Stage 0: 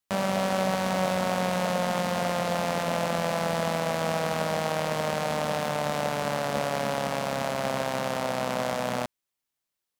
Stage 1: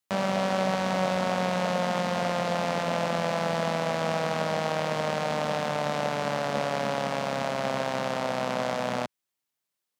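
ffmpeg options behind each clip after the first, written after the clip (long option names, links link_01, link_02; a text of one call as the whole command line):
ffmpeg -i in.wav -filter_complex "[0:a]highpass=96,acrossover=split=7200[link_01][link_02];[link_02]acompressor=threshold=-52dB:ratio=4:attack=1:release=60[link_03];[link_01][link_03]amix=inputs=2:normalize=0" out.wav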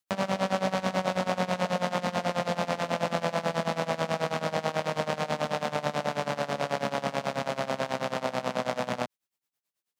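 ffmpeg -i in.wav -af "tremolo=f=9.2:d=0.89,volume=2dB" out.wav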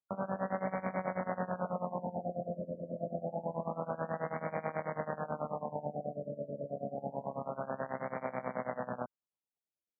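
ffmpeg -i in.wav -af "afftfilt=real='re*lt(b*sr/1024,660*pow(2400/660,0.5+0.5*sin(2*PI*0.27*pts/sr)))':imag='im*lt(b*sr/1024,660*pow(2400/660,0.5+0.5*sin(2*PI*0.27*pts/sr)))':win_size=1024:overlap=0.75,volume=-7.5dB" out.wav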